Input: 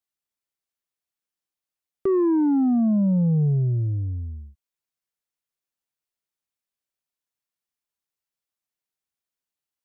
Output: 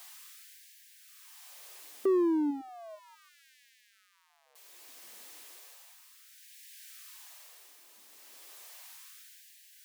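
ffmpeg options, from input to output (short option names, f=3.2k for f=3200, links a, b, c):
-af "aeval=exprs='val(0)+0.5*0.0112*sgn(val(0))':c=same,tremolo=f=0.57:d=0.56,bandreject=f=1.4k:w=12,afftfilt=real='re*gte(b*sr/1024,210*pow(1600/210,0.5+0.5*sin(2*PI*0.34*pts/sr)))':imag='im*gte(b*sr/1024,210*pow(1600/210,0.5+0.5*sin(2*PI*0.34*pts/sr)))':win_size=1024:overlap=0.75,volume=-3.5dB"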